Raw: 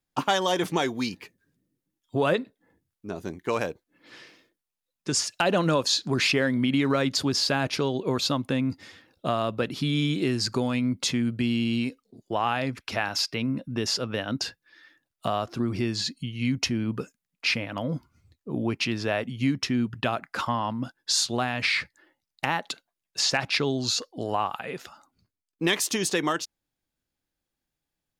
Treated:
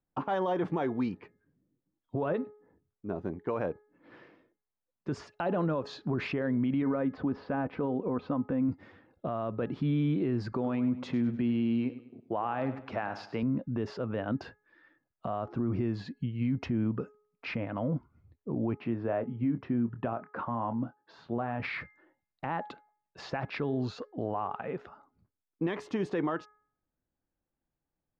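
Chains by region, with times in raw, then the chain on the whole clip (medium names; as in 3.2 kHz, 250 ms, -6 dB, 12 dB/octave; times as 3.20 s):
6.82–8.69 s: low-pass 2.1 kHz + comb 4 ms, depth 37%
10.52–13.43 s: high-pass 150 Hz 6 dB/octave + feedback delay 100 ms, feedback 37%, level -14 dB
18.77–21.60 s: high-pass 140 Hz 6 dB/octave + tape spacing loss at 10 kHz 31 dB + doubling 26 ms -11 dB
whole clip: low-pass 1.2 kHz 12 dB/octave; de-hum 420.4 Hz, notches 5; peak limiter -22 dBFS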